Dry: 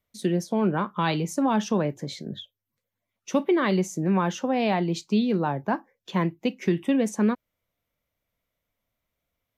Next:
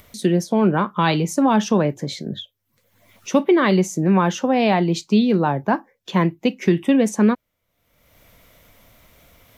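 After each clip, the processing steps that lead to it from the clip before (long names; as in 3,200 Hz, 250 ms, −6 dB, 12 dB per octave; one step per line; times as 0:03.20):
upward compression, threshold −39 dBFS
level +6.5 dB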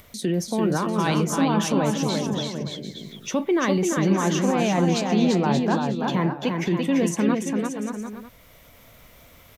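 brickwall limiter −15 dBFS, peak gain reduction 10 dB
bouncing-ball delay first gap 340 ms, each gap 0.7×, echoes 5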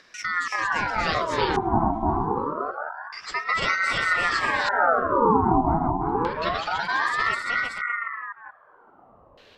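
delay that plays each chunk backwards 181 ms, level −2 dB
auto-filter low-pass square 0.32 Hz 450–3,800 Hz
ring modulator whose carrier an LFO sweeps 1,100 Hz, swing 55%, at 0.26 Hz
level −2 dB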